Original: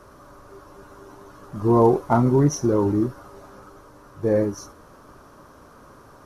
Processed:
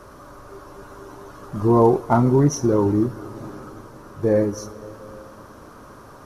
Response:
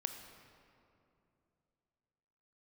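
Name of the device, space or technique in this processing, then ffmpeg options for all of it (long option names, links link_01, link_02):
ducked reverb: -filter_complex "[0:a]asplit=3[link_01][link_02][link_03];[1:a]atrim=start_sample=2205[link_04];[link_02][link_04]afir=irnorm=-1:irlink=0[link_05];[link_03]apad=whole_len=276031[link_06];[link_05][link_06]sidechaincompress=threshold=-25dB:ratio=8:attack=16:release=644,volume=-2.5dB[link_07];[link_01][link_07]amix=inputs=2:normalize=0"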